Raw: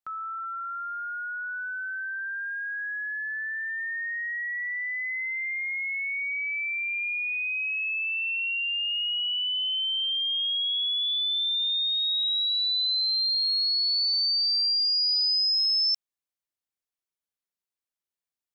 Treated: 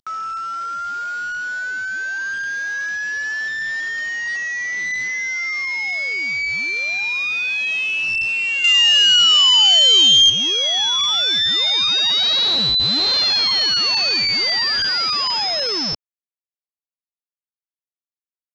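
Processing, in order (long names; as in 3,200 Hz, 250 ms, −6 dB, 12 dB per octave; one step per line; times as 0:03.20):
variable-slope delta modulation 32 kbit/s
0:08.64–0:10.30: high-shelf EQ 2,100 Hz +11.5 dB
level +8 dB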